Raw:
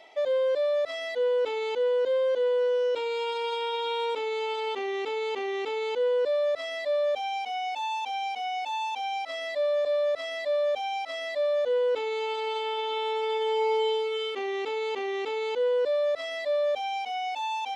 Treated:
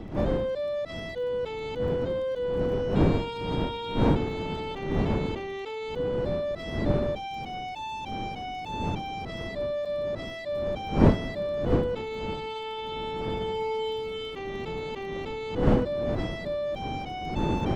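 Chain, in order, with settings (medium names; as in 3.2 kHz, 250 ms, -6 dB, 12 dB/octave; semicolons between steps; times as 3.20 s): wind noise 310 Hz -26 dBFS; crackle 23 per s -41 dBFS; trim -4.5 dB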